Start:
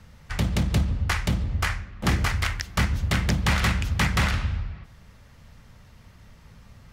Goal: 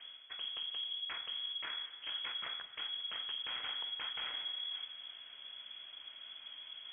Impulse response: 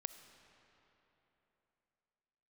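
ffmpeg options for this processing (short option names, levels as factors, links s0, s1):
-filter_complex "[0:a]areverse,acompressor=threshold=0.0141:ratio=6,areverse,asoftclip=type=tanh:threshold=0.0224[s0];[1:a]atrim=start_sample=2205,afade=t=out:st=0.45:d=0.01,atrim=end_sample=20286[s1];[s0][s1]afir=irnorm=-1:irlink=0,lowpass=f=2900:t=q:w=0.5098,lowpass=f=2900:t=q:w=0.6013,lowpass=f=2900:t=q:w=0.9,lowpass=f=2900:t=q:w=2.563,afreqshift=-3400,volume=1.26"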